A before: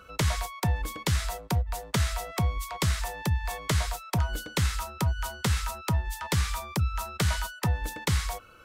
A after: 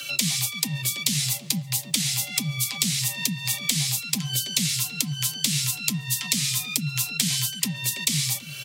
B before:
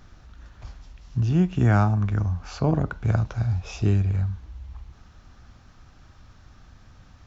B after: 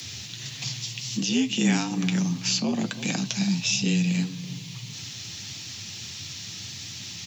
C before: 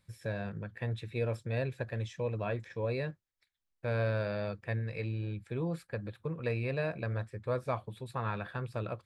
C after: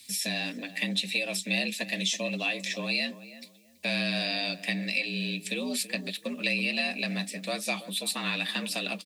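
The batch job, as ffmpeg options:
-filter_complex "[0:a]asplit=2[a][b];[b]acompressor=threshold=-37dB:ratio=6,volume=2dB[c];[a][c]amix=inputs=2:normalize=0,aexciter=amount=12.9:drive=6.2:freq=2.1k,acrossover=split=160[d][e];[e]acompressor=threshold=-22dB:ratio=3[f];[d][f]amix=inputs=2:normalize=0,flanger=delay=4.6:depth=3.7:regen=-40:speed=1.6:shape=sinusoidal,afreqshift=81,asplit=2[g][h];[h]adelay=329,lowpass=f=1.3k:p=1,volume=-13dB,asplit=2[i][j];[j]adelay=329,lowpass=f=1.3k:p=1,volume=0.26,asplit=2[k][l];[l]adelay=329,lowpass=f=1.3k:p=1,volume=0.26[m];[i][k][m]amix=inputs=3:normalize=0[n];[g][n]amix=inputs=2:normalize=0"

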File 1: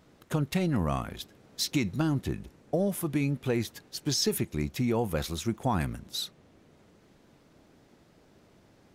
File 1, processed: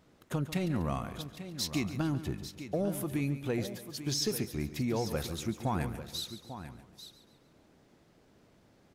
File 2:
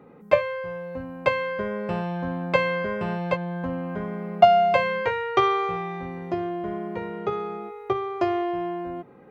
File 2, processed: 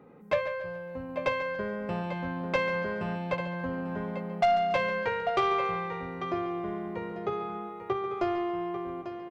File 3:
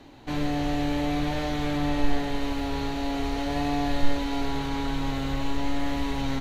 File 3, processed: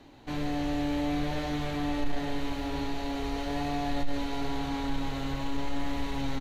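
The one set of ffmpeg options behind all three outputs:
-filter_complex "[0:a]asplit=2[a][b];[b]aecho=0:1:844:0.251[c];[a][c]amix=inputs=2:normalize=0,asoftclip=type=tanh:threshold=-14.5dB,asplit=2[d][e];[e]aecho=0:1:141|282|423|564:0.224|0.0918|0.0376|0.0154[f];[d][f]amix=inputs=2:normalize=0,volume=-4dB"

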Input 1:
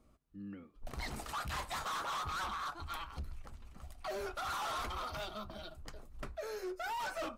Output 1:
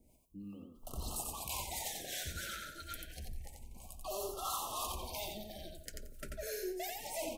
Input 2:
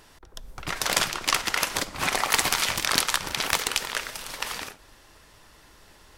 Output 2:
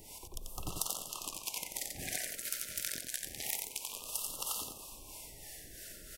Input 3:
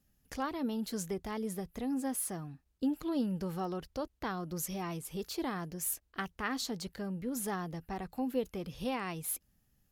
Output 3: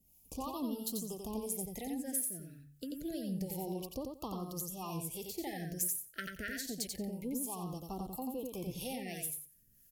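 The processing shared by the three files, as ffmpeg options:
-filter_complex "[0:a]acrossover=split=5300[a][b];[b]crystalizer=i=2.5:c=0[c];[a][c]amix=inputs=2:normalize=0,acompressor=threshold=-35dB:ratio=12,bandreject=f=47.82:t=h:w=4,bandreject=f=95.64:t=h:w=4,bandreject=f=143.46:t=h:w=4,acrossover=split=520[d][e];[d]aeval=exprs='val(0)*(1-0.7/2+0.7/2*cos(2*PI*3*n/s))':c=same[f];[e]aeval=exprs='val(0)*(1-0.7/2-0.7/2*cos(2*PI*3*n/s))':c=same[g];[f][g]amix=inputs=2:normalize=0,asplit=2[h][i];[i]aecho=0:1:89|178|267:0.631|0.107|0.0182[j];[h][j]amix=inputs=2:normalize=0,afftfilt=real='re*(1-between(b*sr/1024,930*pow(1900/930,0.5+0.5*sin(2*PI*0.28*pts/sr))/1.41,930*pow(1900/930,0.5+0.5*sin(2*PI*0.28*pts/sr))*1.41))':imag='im*(1-between(b*sr/1024,930*pow(1900/930,0.5+0.5*sin(2*PI*0.28*pts/sr))/1.41,930*pow(1900/930,0.5+0.5*sin(2*PI*0.28*pts/sr))*1.41))':win_size=1024:overlap=0.75,volume=2.5dB"

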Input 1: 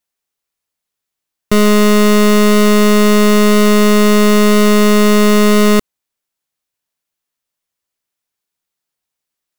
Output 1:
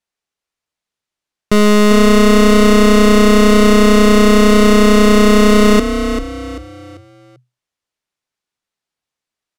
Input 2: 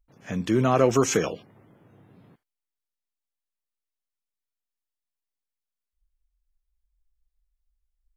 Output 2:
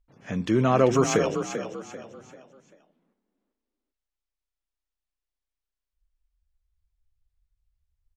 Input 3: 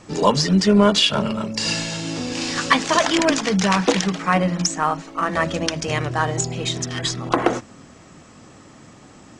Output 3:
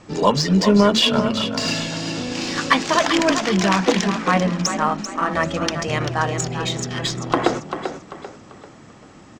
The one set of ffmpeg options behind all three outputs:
-filter_complex "[0:a]asplit=5[a][b][c][d][e];[b]adelay=391,afreqshift=31,volume=-8.5dB[f];[c]adelay=782,afreqshift=62,volume=-17.4dB[g];[d]adelay=1173,afreqshift=93,volume=-26.2dB[h];[e]adelay=1564,afreqshift=124,volume=-35.1dB[i];[a][f][g][h][i]amix=inputs=5:normalize=0,adynamicsmooth=sensitivity=1:basefreq=8k"

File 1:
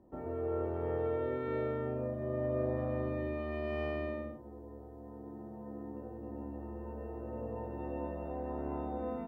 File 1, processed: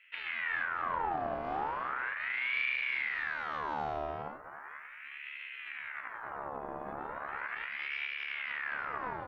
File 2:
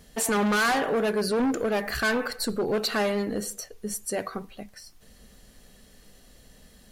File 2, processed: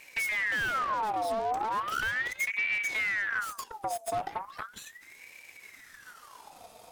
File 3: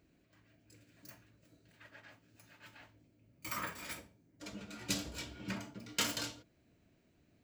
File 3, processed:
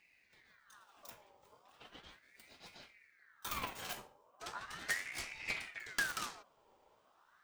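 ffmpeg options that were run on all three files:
-filter_complex "[0:a]aeval=exprs='0.141*(cos(1*acos(clip(val(0)/0.141,-1,1)))-cos(1*PI/2))+0.0282*(cos(8*acos(clip(val(0)/0.141,-1,1)))-cos(8*PI/2))':c=same,acrossover=split=140[a][b];[b]acompressor=threshold=-38dB:ratio=10[c];[a][c]amix=inputs=2:normalize=0,aeval=exprs='val(0)*sin(2*PI*1500*n/s+1500*0.55/0.37*sin(2*PI*0.37*n/s))':c=same,volume=3.5dB"

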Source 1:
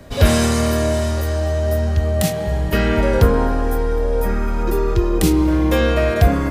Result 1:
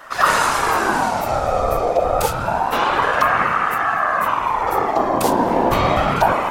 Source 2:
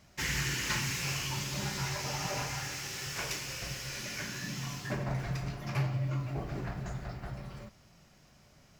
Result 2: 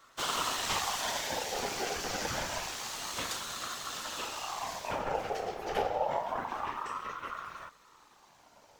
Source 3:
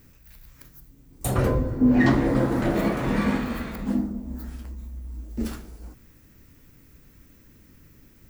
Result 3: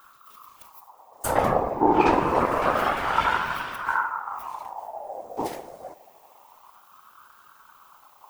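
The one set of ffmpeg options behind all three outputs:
-af "acontrast=87,afftfilt=real='hypot(re,im)*cos(2*PI*random(0))':imag='hypot(re,im)*sin(2*PI*random(1))':win_size=512:overlap=0.75,aeval=exprs='val(0)*sin(2*PI*920*n/s+920*0.35/0.27*sin(2*PI*0.27*n/s))':c=same,volume=2dB"

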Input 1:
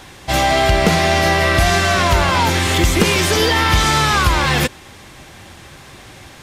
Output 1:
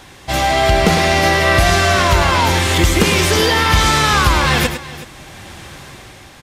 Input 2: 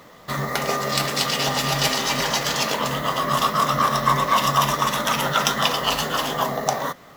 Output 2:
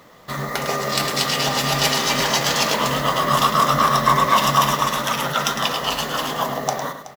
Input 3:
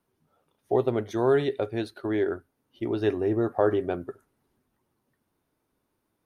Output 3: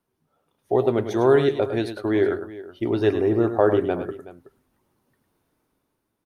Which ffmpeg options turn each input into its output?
-filter_complex "[0:a]dynaudnorm=f=150:g=9:m=7dB,asplit=2[a][b];[b]aecho=0:1:105|374:0.335|0.141[c];[a][c]amix=inputs=2:normalize=0,volume=-1.5dB"

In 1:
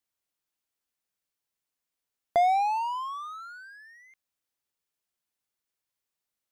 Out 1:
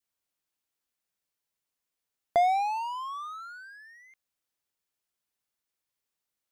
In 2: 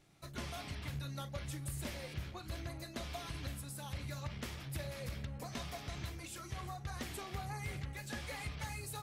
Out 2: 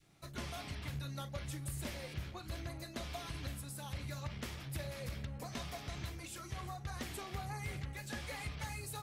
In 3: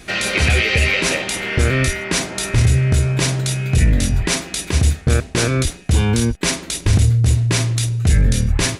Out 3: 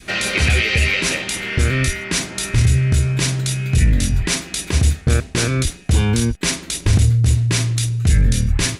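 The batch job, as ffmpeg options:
-af "adynamicequalizer=threshold=0.0141:dfrequency=650:dqfactor=0.79:tfrequency=650:tqfactor=0.79:attack=5:release=100:ratio=0.375:range=3.5:mode=cutabove:tftype=bell"

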